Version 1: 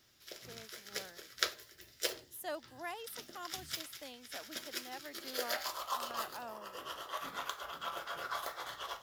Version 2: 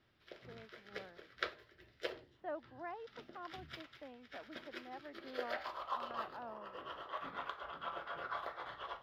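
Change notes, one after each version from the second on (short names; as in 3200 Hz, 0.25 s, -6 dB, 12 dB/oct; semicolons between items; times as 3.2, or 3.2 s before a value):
speech: add LPF 1700 Hz 12 dB/oct; master: add air absorption 390 m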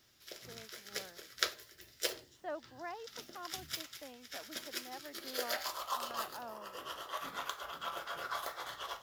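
master: remove air absorption 390 m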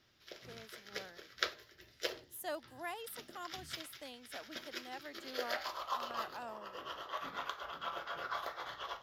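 speech: remove LPF 1700 Hz 12 dB/oct; background: add running mean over 5 samples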